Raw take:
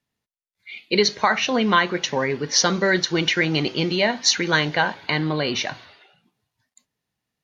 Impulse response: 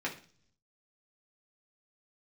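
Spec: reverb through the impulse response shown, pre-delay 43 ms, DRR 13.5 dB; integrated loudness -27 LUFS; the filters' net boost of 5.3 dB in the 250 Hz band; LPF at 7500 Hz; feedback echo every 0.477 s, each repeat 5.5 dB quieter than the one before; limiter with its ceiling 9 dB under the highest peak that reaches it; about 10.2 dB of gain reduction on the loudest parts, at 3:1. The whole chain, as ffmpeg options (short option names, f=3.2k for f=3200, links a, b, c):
-filter_complex "[0:a]lowpass=7.5k,equalizer=f=250:t=o:g=7.5,acompressor=threshold=-26dB:ratio=3,alimiter=limit=-19dB:level=0:latency=1,aecho=1:1:477|954|1431|1908|2385|2862|3339:0.531|0.281|0.149|0.079|0.0419|0.0222|0.0118,asplit=2[a][b];[1:a]atrim=start_sample=2205,adelay=43[c];[b][c]afir=irnorm=-1:irlink=0,volume=-18.5dB[d];[a][d]amix=inputs=2:normalize=0,volume=1.5dB"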